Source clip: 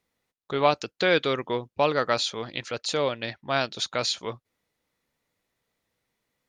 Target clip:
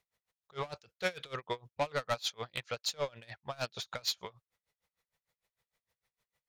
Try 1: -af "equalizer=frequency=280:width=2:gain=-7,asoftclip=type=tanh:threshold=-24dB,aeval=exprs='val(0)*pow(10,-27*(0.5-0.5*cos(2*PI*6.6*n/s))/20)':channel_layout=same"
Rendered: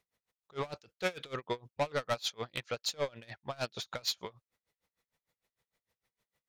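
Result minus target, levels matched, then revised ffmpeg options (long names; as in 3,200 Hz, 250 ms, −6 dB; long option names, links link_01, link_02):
250 Hz band +3.5 dB
-af "equalizer=frequency=280:width=2:gain=-17,asoftclip=type=tanh:threshold=-24dB,aeval=exprs='val(0)*pow(10,-27*(0.5-0.5*cos(2*PI*6.6*n/s))/20)':channel_layout=same"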